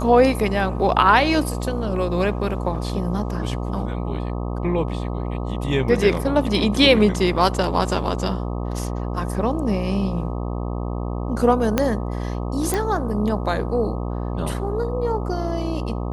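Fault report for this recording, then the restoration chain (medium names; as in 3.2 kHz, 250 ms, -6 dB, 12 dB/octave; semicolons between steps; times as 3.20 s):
buzz 60 Hz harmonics 21 -26 dBFS
11.78 s: pop -4 dBFS
12.74 s: pop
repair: de-click; de-hum 60 Hz, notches 21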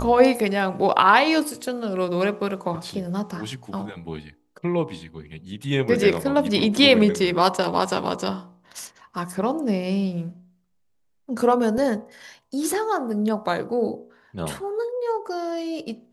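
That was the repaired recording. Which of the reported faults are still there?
11.78 s: pop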